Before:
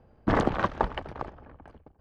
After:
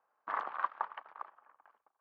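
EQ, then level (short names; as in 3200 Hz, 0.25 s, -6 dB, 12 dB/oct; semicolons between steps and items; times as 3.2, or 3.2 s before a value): ladder band-pass 1300 Hz, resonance 50%; +1.0 dB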